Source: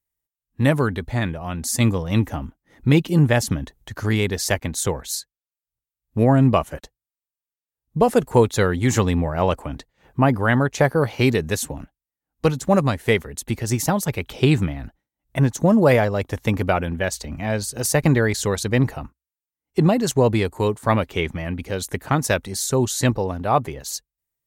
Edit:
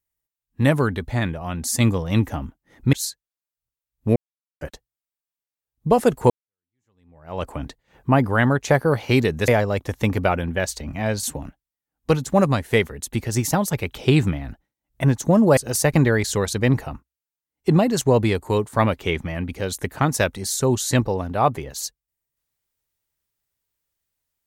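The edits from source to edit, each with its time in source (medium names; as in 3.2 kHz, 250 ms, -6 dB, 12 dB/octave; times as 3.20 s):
2.93–5.03 s: delete
6.26–6.71 s: mute
8.40–9.58 s: fade in exponential
15.92–17.67 s: move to 11.58 s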